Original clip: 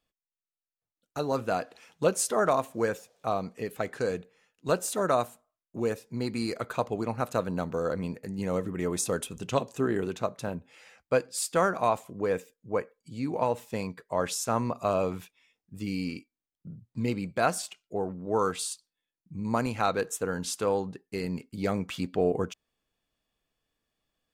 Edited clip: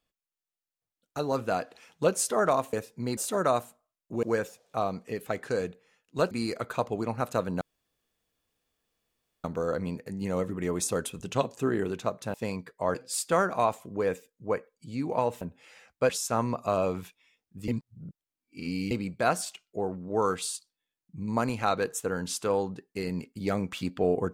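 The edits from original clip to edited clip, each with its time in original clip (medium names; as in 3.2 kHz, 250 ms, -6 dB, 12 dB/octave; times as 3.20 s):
2.73–4.81 s: swap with 5.87–6.31 s
7.61 s: insert room tone 1.83 s
10.51–11.19 s: swap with 13.65–14.26 s
15.85–17.08 s: reverse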